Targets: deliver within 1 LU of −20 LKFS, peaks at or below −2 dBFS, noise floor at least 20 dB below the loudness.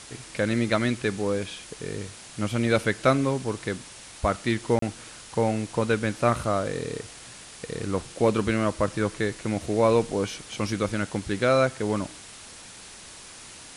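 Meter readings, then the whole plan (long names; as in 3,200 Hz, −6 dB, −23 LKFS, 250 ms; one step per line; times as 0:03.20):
number of dropouts 1; longest dropout 33 ms; background noise floor −45 dBFS; target noise floor −47 dBFS; integrated loudness −26.5 LKFS; sample peak −7.0 dBFS; target loudness −20.0 LKFS
→ repair the gap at 0:04.79, 33 ms
broadband denoise 6 dB, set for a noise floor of −45 dBFS
level +6.5 dB
brickwall limiter −2 dBFS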